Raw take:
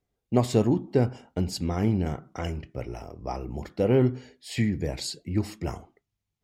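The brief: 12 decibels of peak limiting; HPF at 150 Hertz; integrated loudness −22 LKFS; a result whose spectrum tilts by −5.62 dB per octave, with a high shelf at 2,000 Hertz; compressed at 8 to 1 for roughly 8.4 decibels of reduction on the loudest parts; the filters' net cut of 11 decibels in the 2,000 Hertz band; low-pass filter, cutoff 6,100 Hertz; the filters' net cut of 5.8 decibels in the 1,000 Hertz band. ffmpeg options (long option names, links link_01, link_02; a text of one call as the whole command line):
ffmpeg -i in.wav -af "highpass=150,lowpass=6100,equalizer=frequency=1000:width_type=o:gain=-6,highshelf=frequency=2000:gain=-5,equalizer=frequency=2000:width_type=o:gain=-9,acompressor=threshold=-26dB:ratio=8,volume=18dB,alimiter=limit=-10dB:level=0:latency=1" out.wav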